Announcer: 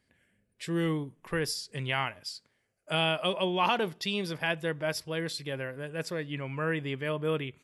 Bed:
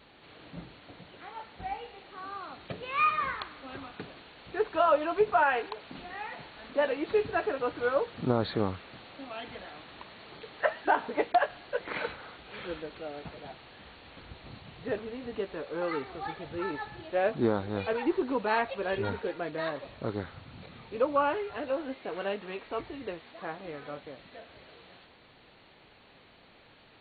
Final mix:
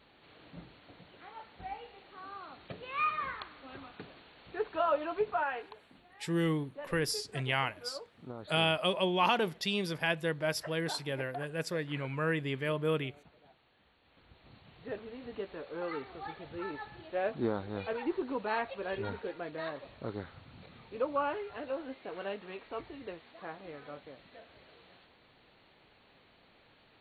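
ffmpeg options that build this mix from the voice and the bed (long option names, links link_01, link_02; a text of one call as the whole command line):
ffmpeg -i stem1.wav -i stem2.wav -filter_complex "[0:a]adelay=5600,volume=-1dB[link_01];[1:a]volume=6.5dB,afade=type=out:start_time=5.09:duration=0.93:silence=0.251189,afade=type=in:start_time=14:duration=1.26:silence=0.251189[link_02];[link_01][link_02]amix=inputs=2:normalize=0" out.wav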